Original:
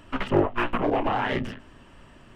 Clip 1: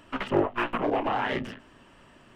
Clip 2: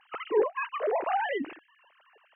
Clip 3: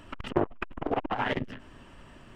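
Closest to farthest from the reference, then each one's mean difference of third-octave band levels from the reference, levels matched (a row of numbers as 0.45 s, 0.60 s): 1, 3, 2; 1.0 dB, 5.0 dB, 13.0 dB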